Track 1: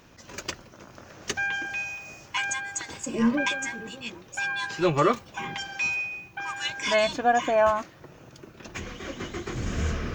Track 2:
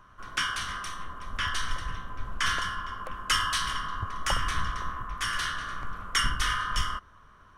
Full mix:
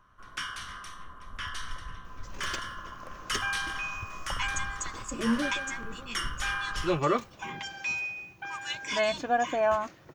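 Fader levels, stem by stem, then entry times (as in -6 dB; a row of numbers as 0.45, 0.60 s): -4.5, -7.0 dB; 2.05, 0.00 s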